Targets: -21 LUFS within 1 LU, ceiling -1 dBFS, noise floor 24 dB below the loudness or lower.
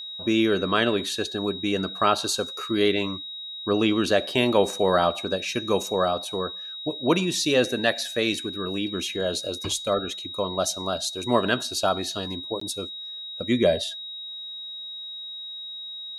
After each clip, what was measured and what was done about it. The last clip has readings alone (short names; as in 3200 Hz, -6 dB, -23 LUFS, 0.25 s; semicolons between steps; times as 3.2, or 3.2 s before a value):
dropouts 1; longest dropout 14 ms; steady tone 3800 Hz; tone level -34 dBFS; loudness -25.5 LUFS; peak -5.5 dBFS; loudness target -21.0 LUFS
-> interpolate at 12.6, 14 ms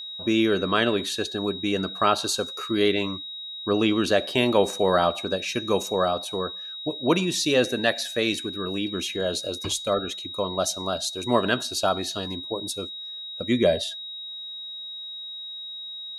dropouts 0; steady tone 3800 Hz; tone level -34 dBFS
-> notch 3800 Hz, Q 30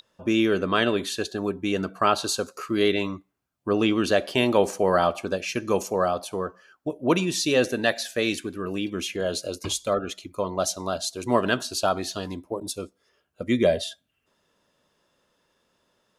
steady tone none; loudness -25.5 LUFS; peak -6.0 dBFS; loudness target -21.0 LUFS
-> gain +4.5 dB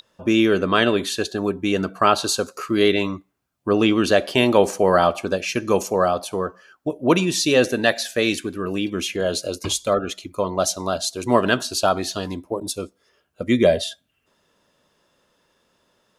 loudness -21.0 LUFS; peak -1.5 dBFS; noise floor -69 dBFS